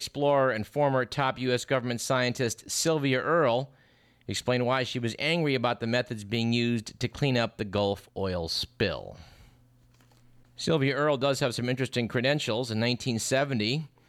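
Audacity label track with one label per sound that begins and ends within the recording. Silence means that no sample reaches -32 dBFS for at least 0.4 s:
4.290000	9.100000	sound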